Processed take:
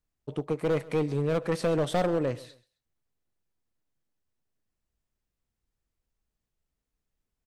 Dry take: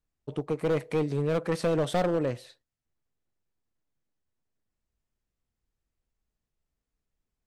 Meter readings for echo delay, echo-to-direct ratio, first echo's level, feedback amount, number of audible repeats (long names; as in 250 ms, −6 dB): 133 ms, −19.5 dB, −20.0 dB, 29%, 2